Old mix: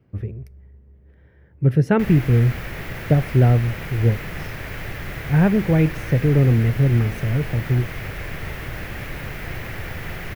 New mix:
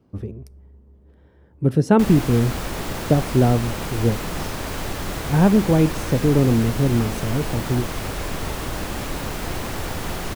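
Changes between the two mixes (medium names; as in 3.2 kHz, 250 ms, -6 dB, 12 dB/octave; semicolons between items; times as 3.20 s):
background +3.5 dB; master: add graphic EQ 125/250/1000/2000/4000/8000 Hz -6/+6/+7/-10/+5/+11 dB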